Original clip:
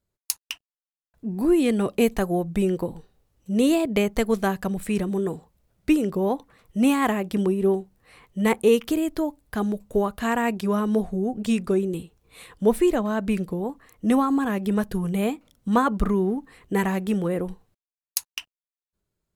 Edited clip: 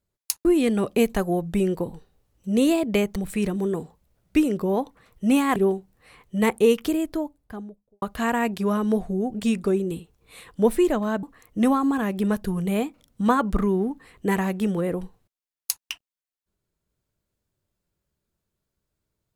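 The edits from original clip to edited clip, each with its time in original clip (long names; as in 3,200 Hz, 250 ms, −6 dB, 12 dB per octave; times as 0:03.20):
0:00.45–0:01.47: remove
0:04.18–0:04.69: remove
0:07.09–0:07.59: remove
0:08.89–0:10.05: fade out and dull
0:13.26–0:13.70: remove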